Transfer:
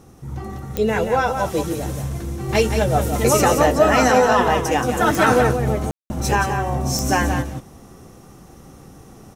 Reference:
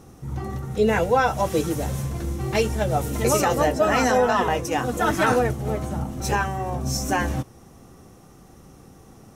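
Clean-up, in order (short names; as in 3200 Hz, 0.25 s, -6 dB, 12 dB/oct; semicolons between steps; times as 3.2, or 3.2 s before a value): de-click; room tone fill 5.91–6.1; inverse comb 0.176 s -7.5 dB; gain 0 dB, from 2.49 s -4 dB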